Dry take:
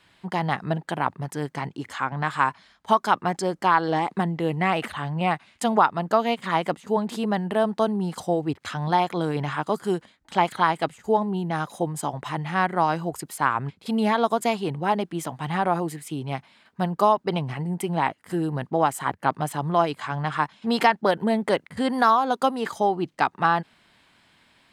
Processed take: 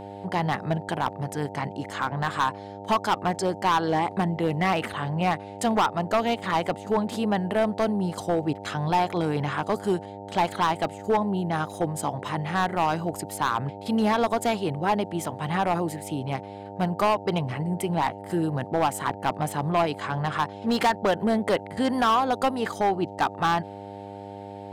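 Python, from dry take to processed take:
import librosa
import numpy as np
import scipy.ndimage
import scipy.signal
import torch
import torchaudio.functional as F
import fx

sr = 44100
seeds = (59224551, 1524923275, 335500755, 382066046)

y = fx.dmg_buzz(x, sr, base_hz=100.0, harmonics=9, level_db=-39.0, tilt_db=0, odd_only=False)
y = np.clip(10.0 ** (16.5 / 20.0) * y, -1.0, 1.0) / 10.0 ** (16.5 / 20.0)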